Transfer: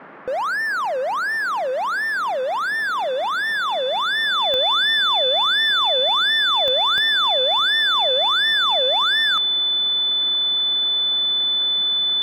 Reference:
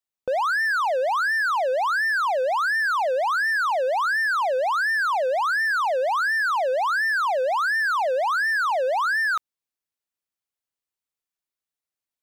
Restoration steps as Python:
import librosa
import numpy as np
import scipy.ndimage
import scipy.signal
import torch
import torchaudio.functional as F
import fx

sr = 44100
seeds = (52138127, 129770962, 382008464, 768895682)

y = fx.fix_declick_ar(x, sr, threshold=10.0)
y = fx.notch(y, sr, hz=3500.0, q=30.0)
y = fx.noise_reduce(y, sr, print_start_s=0.0, print_end_s=0.5, reduce_db=30.0)